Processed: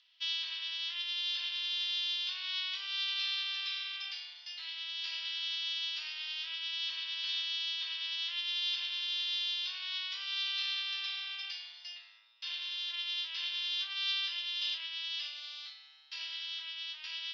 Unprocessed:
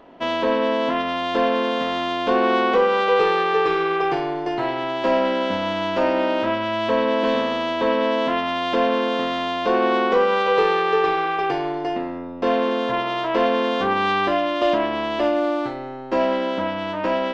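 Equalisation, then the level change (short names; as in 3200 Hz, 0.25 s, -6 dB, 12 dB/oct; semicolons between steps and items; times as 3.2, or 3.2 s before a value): ladder high-pass 3000 Hz, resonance 50%; air absorption 170 m; bell 5200 Hz +14.5 dB 0.6 oct; +4.0 dB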